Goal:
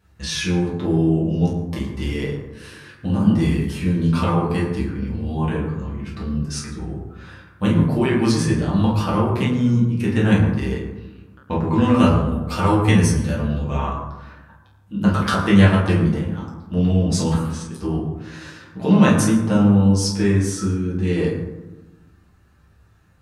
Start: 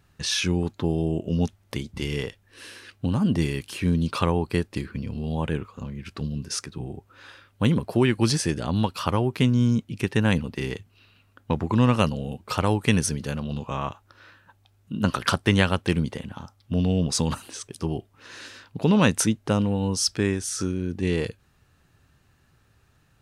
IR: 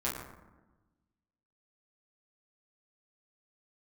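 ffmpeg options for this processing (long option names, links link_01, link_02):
-filter_complex "[0:a]asettb=1/sr,asplit=3[link_01][link_02][link_03];[link_01]atrim=end=11.684[link_04];[link_02]atrim=start=11.68:end=13.86,asetpts=PTS-STARTPTS,afade=type=in:duration=0.004:curve=qsin,afade=type=out:start_time=2.176:duration=0.004:curve=qsin,asplit=2[link_05][link_06];[link_06]adelay=12,volume=-4.5dB[link_07];[link_05][link_07]amix=inputs=2:normalize=0,atrim=end_sample=96138[link_08];[link_03]atrim=start=13.856[link_09];[link_04][link_08]acrossfade=duration=0.004:curve1=hsin:curve2=qsin[link_10];[link_10][link_09]acrossfade=duration=0.004:curve1=qsin:curve2=hsin[link_11];[1:a]atrim=start_sample=2205[link_12];[link_11][link_12]afir=irnorm=-1:irlink=0,volume=-2.5dB"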